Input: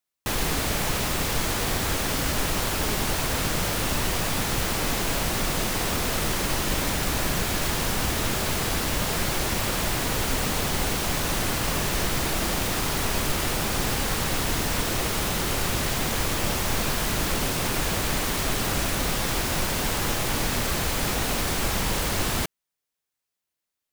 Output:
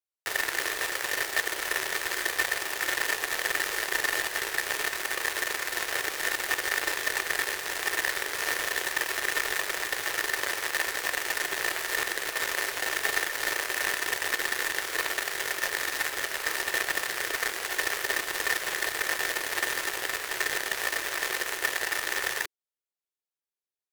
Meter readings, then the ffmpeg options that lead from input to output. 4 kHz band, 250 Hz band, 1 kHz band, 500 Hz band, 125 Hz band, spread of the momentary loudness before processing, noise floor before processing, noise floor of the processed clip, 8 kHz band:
−4.0 dB, −16.5 dB, −5.5 dB, −6.5 dB, −26.5 dB, 0 LU, −85 dBFS, below −85 dBFS, −5.0 dB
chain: -af "aeval=exprs='0.282*(cos(1*acos(clip(val(0)/0.282,-1,1)))-cos(1*PI/2))+0.0562*(cos(4*acos(clip(val(0)/0.282,-1,1)))-cos(4*PI/2))+0.0251*(cos(7*acos(clip(val(0)/0.282,-1,1)))-cos(7*PI/2))':channel_layout=same,aeval=exprs='val(0)*sin(2*PI*1800*n/s)':channel_layout=same,lowshelf=frequency=300:width_type=q:width=3:gain=-7.5,volume=-1.5dB"

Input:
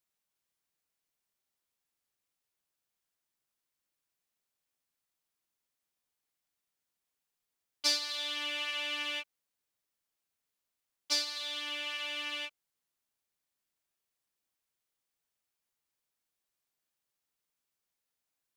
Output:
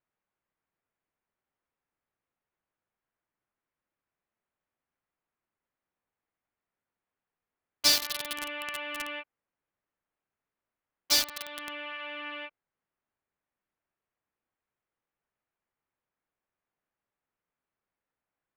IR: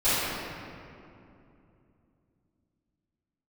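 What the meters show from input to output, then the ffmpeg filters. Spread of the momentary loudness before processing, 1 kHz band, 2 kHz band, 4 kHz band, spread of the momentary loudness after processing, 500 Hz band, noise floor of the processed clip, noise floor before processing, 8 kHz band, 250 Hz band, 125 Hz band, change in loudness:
9 LU, +5.5 dB, +2.0 dB, +2.5 dB, 16 LU, +5.5 dB, below −85 dBFS, below −85 dBFS, +8.0 dB, +5.5 dB, can't be measured, +4.0 dB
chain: -filter_complex "[0:a]highshelf=frequency=11000:gain=8.5,acrossover=split=2300[link_01][link_02];[link_02]acrusher=bits=4:mix=0:aa=0.000001[link_03];[link_01][link_03]amix=inputs=2:normalize=0,volume=5dB"

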